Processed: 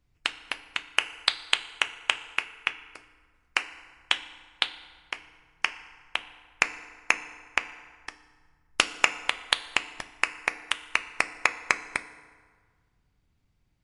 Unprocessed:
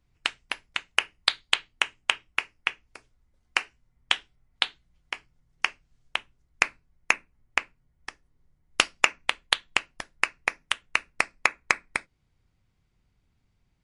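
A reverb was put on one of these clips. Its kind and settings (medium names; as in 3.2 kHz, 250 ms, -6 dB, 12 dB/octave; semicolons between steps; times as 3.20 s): FDN reverb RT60 1.7 s, low-frequency decay 0.95×, high-frequency decay 0.65×, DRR 11.5 dB; trim -1 dB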